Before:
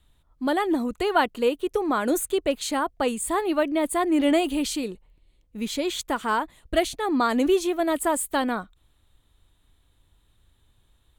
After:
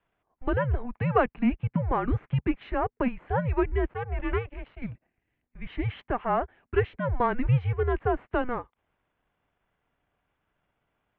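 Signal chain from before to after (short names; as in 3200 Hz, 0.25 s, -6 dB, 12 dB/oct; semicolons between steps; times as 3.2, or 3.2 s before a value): half-wave gain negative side -3 dB; 3.91–4.82 power-law curve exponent 2; mistuned SSB -250 Hz 260–2600 Hz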